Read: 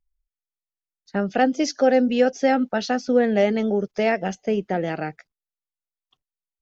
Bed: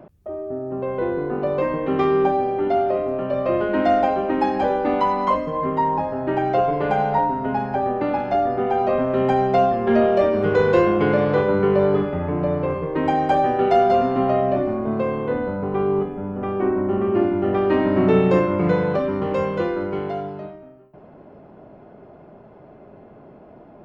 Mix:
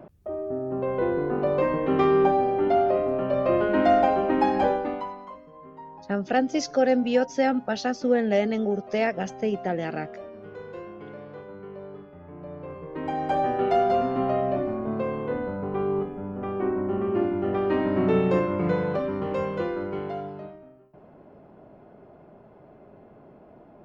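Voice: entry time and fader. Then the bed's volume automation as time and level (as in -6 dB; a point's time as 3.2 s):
4.95 s, -3.5 dB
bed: 4.67 s -1.5 dB
5.31 s -23 dB
12.08 s -23 dB
13.42 s -5.5 dB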